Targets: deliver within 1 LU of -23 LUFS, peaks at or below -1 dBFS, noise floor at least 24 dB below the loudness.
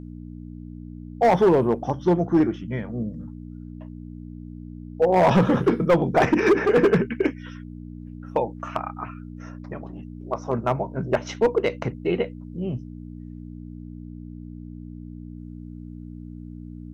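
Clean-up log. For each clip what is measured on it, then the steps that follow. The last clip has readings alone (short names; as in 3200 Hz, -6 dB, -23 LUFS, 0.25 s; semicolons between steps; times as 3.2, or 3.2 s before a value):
clipped 1.1%; flat tops at -12.0 dBFS; hum 60 Hz; harmonics up to 300 Hz; hum level -35 dBFS; loudness -22.5 LUFS; peak -12.0 dBFS; loudness target -23.0 LUFS
-> clip repair -12 dBFS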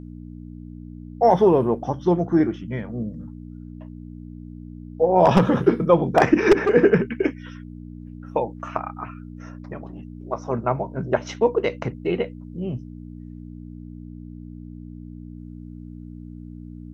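clipped 0.0%; hum 60 Hz; harmonics up to 300 Hz; hum level -35 dBFS
-> de-hum 60 Hz, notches 5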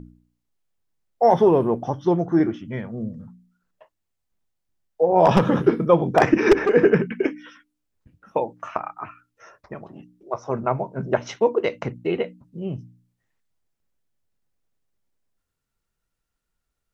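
hum none; loudness -21.0 LUFS; peak -2.5 dBFS; loudness target -23.0 LUFS
-> gain -2 dB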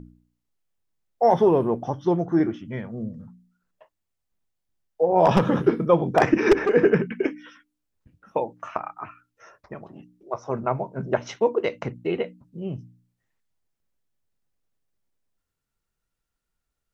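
loudness -23.0 LUFS; peak -4.5 dBFS; noise floor -82 dBFS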